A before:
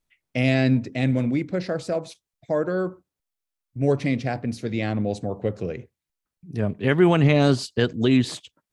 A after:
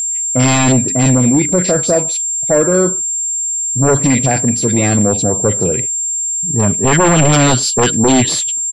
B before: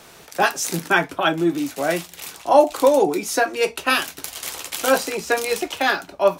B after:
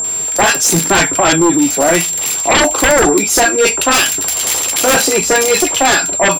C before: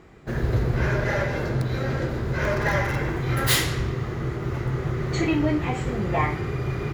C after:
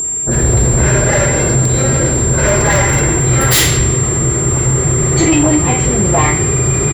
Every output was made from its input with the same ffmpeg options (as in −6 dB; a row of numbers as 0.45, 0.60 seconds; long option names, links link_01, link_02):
-filter_complex "[0:a]acrossover=split=1400[link_01][link_02];[link_02]adelay=40[link_03];[link_01][link_03]amix=inputs=2:normalize=0,aeval=exprs='0.841*sin(PI/2*5.62*val(0)/0.841)':channel_layout=same,aeval=exprs='val(0)+0.316*sin(2*PI*7400*n/s)':channel_layout=same,volume=-5.5dB"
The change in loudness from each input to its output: +11.0, +9.5, +13.5 LU